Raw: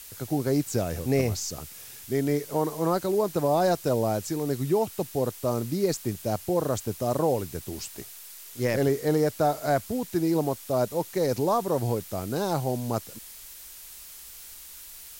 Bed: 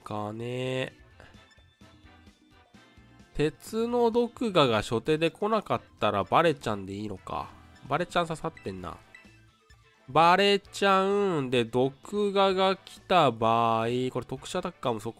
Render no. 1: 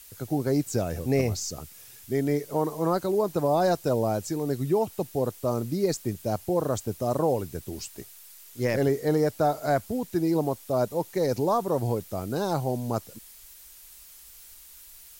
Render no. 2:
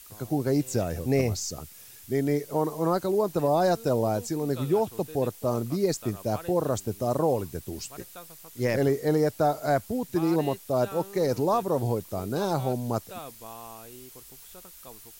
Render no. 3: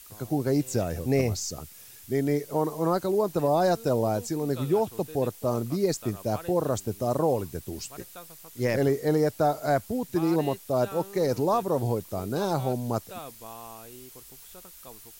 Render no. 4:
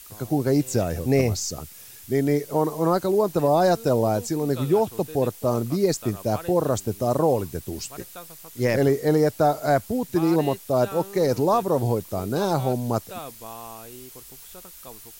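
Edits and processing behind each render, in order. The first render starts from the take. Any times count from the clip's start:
broadband denoise 6 dB, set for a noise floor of −45 dBFS
mix in bed −19.5 dB
no processing that can be heard
level +4 dB

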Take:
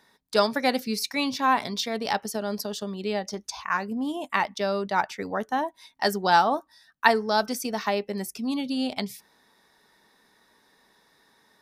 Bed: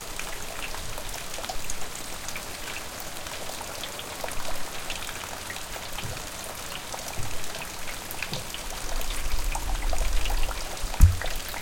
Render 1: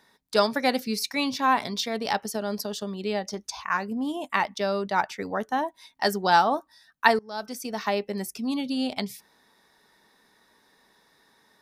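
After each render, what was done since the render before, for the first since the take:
0:07.19–0:07.93: fade in linear, from −22.5 dB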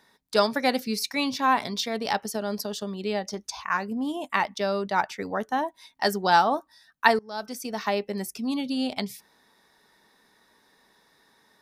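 no processing that can be heard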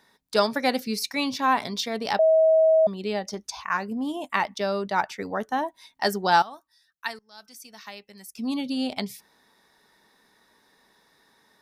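0:02.19–0:02.87: beep over 640 Hz −14.5 dBFS
0:06.42–0:08.38: guitar amp tone stack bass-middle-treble 5-5-5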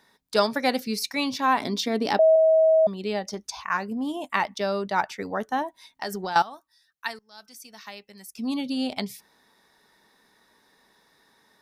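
0:01.60–0:02.36: parametric band 300 Hz +13.5 dB
0:05.62–0:06.36: downward compressor, threshold −27 dBFS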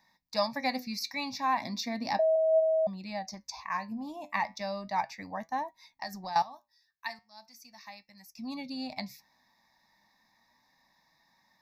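flanger 0.35 Hz, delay 5.2 ms, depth 4.9 ms, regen +77%
phaser with its sweep stopped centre 2,100 Hz, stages 8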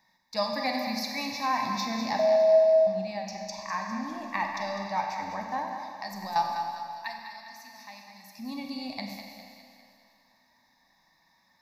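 echo with a time of its own for lows and highs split 520 Hz, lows 84 ms, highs 202 ms, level −9 dB
four-comb reverb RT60 2.2 s, combs from 32 ms, DRR 2.5 dB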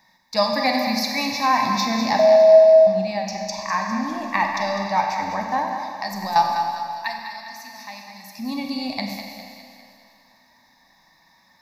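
level +9 dB

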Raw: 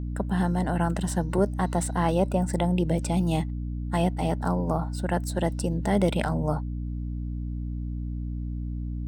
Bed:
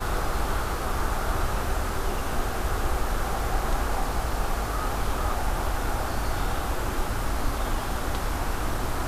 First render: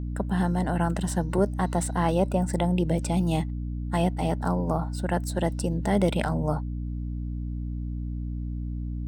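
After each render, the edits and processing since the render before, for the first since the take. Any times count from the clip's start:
no processing that can be heard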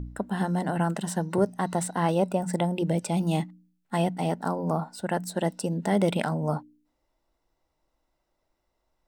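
hum removal 60 Hz, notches 5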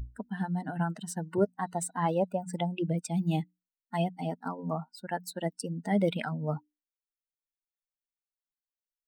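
spectral dynamics exaggerated over time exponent 2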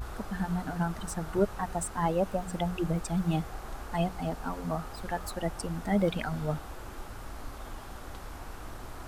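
mix in bed −14.5 dB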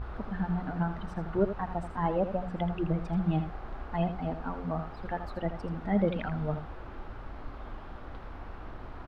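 high-frequency loss of the air 340 metres
on a send: single-tap delay 81 ms −10 dB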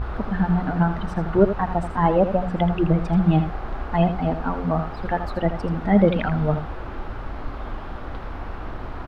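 level +10.5 dB

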